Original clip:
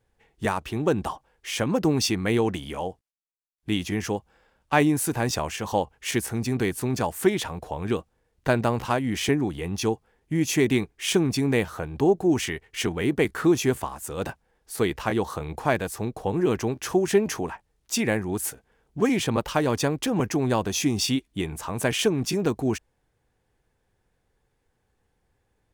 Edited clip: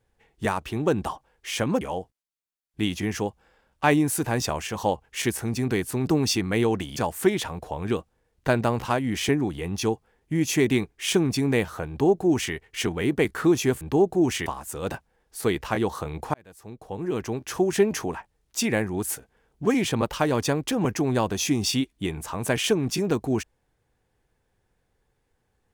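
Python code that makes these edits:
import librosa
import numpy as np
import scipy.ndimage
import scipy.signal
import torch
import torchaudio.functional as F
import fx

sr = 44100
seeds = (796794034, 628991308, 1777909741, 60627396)

y = fx.edit(x, sr, fx.move(start_s=1.81, length_s=0.89, to_s=6.96),
    fx.duplicate(start_s=11.89, length_s=0.65, to_s=13.81),
    fx.fade_in_span(start_s=15.69, length_s=1.4), tone=tone)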